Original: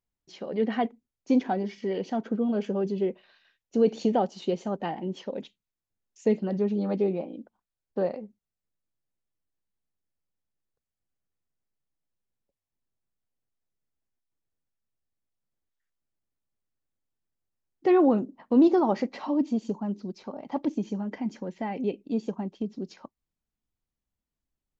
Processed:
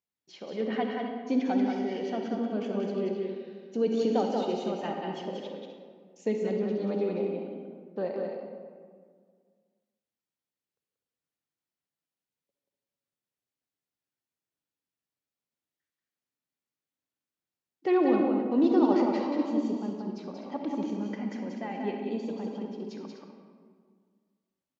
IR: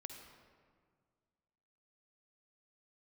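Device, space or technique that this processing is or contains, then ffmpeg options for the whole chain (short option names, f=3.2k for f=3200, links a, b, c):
stadium PA: -filter_complex "[0:a]highpass=140,equalizer=f=3k:t=o:w=2.1:g=4,aecho=1:1:183.7|250.7:0.631|0.282[a];[1:a]atrim=start_sample=2205[b];[a][b]afir=irnorm=-1:irlink=0"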